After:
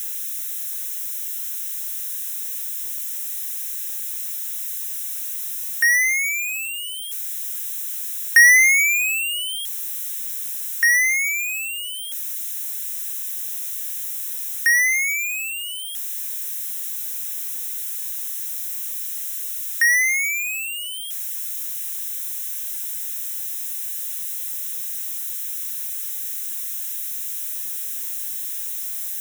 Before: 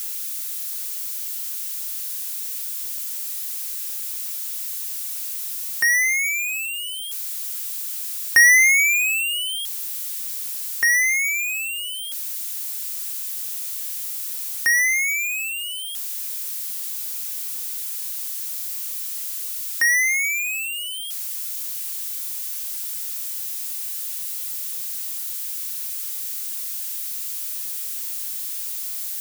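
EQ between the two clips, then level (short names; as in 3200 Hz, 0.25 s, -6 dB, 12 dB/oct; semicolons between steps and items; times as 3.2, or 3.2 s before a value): resonant high-pass 1600 Hz, resonance Q 3; Butterworth band-stop 4600 Hz, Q 4.3; high shelf 2600 Hz +11 dB; -10.0 dB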